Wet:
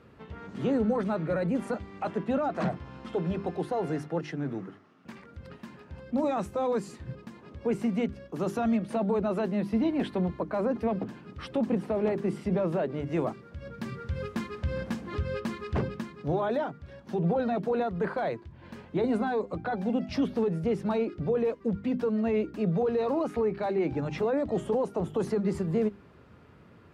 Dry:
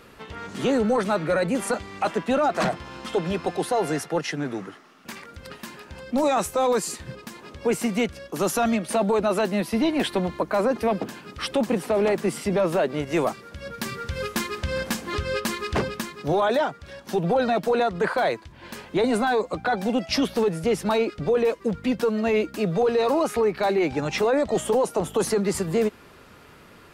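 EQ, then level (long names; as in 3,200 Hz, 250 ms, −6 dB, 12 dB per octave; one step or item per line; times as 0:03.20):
high-pass filter 100 Hz 12 dB per octave
RIAA equalisation playback
mains-hum notches 50/100/150/200/250/300/350/400 Hz
−9.0 dB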